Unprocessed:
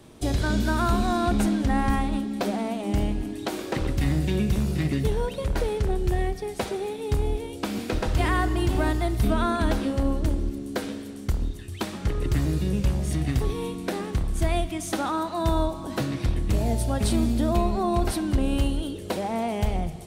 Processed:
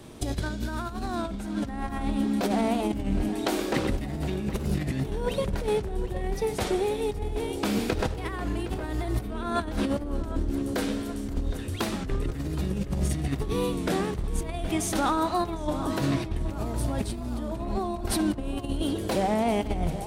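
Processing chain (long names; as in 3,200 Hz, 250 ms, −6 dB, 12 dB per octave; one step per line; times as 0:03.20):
0:03.29–0:03.90: high-pass filter 160 Hz
compressor whose output falls as the input rises −27 dBFS, ratio −0.5
feedback echo with a low-pass in the loop 764 ms, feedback 64%, low-pass 2,200 Hz, level −12 dB
wow of a warped record 33 1/3 rpm, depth 100 cents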